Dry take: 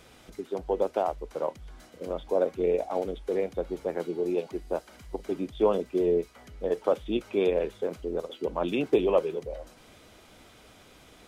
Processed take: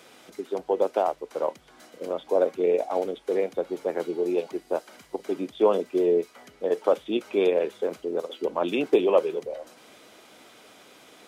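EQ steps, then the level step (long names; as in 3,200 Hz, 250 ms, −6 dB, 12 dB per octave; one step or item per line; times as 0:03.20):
high-pass filter 250 Hz 12 dB per octave
+3.5 dB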